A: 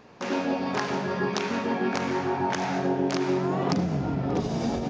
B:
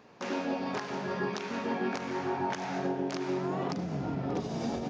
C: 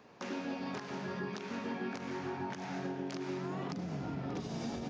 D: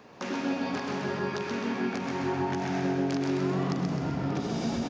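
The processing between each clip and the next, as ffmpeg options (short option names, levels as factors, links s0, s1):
-af "highpass=f=110:p=1,alimiter=limit=0.141:level=0:latency=1:release=306,volume=0.596"
-filter_complex "[0:a]acrossover=split=330|1100[s0][s1][s2];[s0]acompressor=threshold=0.0178:ratio=4[s3];[s1]acompressor=threshold=0.00562:ratio=4[s4];[s2]acompressor=threshold=0.00708:ratio=4[s5];[s3][s4][s5]amix=inputs=3:normalize=0,volume=0.794"
-af "aecho=1:1:130|260|390|520|650|780|910:0.631|0.328|0.171|0.0887|0.0461|0.024|0.0125,volume=2.11"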